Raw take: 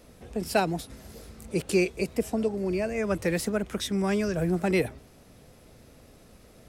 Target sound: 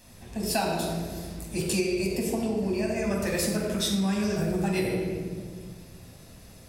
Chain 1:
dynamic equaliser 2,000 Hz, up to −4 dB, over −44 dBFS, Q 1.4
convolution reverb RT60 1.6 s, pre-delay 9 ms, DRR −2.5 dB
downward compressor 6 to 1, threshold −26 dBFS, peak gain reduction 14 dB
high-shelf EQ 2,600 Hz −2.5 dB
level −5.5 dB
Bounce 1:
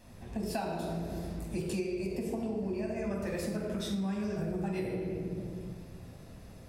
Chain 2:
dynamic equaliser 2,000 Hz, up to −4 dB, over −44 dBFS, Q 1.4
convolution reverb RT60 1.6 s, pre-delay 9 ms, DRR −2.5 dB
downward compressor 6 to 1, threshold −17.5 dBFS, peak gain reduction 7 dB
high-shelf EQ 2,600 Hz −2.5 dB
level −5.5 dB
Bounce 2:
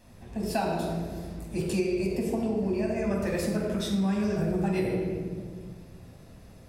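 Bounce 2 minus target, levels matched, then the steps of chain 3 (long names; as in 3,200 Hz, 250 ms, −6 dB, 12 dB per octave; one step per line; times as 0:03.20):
4,000 Hz band −7.0 dB
dynamic equaliser 2,000 Hz, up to −4 dB, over −44 dBFS, Q 1.4
convolution reverb RT60 1.6 s, pre-delay 9 ms, DRR −2.5 dB
downward compressor 6 to 1, threshold −17.5 dBFS, peak gain reduction 7 dB
high-shelf EQ 2,600 Hz +8.5 dB
level −5.5 dB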